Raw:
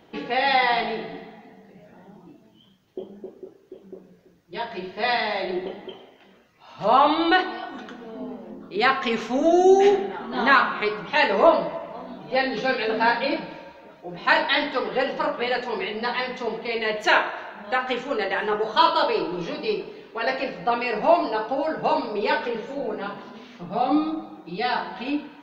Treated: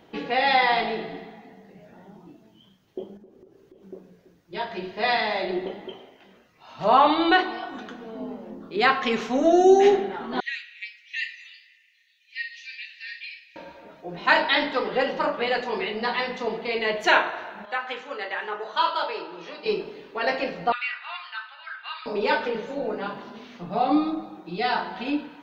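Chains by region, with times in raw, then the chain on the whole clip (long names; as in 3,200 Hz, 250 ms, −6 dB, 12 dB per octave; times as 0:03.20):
0:03.17–0:03.83: low-shelf EQ 190 Hz +8 dB + downward compressor, threshold −48 dBFS
0:10.40–0:13.56: Chebyshev high-pass with heavy ripple 1,800 Hz, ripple 6 dB + parametric band 3,600 Hz −4.5 dB 3 octaves
0:17.65–0:19.66: high-pass filter 1,300 Hz 6 dB per octave + high-shelf EQ 3,700 Hz −9.5 dB
0:20.72–0:22.06: elliptic band-pass filter 1,300–3,900 Hz, stop band 70 dB + comb filter 5.8 ms, depth 32% + frequency shifter +28 Hz
whole clip: no processing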